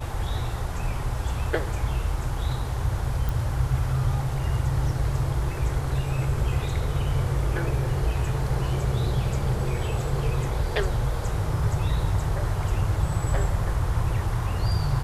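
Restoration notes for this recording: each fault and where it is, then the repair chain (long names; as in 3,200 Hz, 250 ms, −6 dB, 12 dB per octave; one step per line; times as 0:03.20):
0:03.29: click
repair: click removal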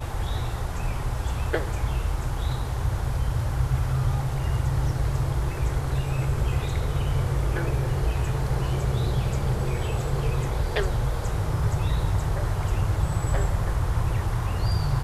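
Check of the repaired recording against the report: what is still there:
none of them is left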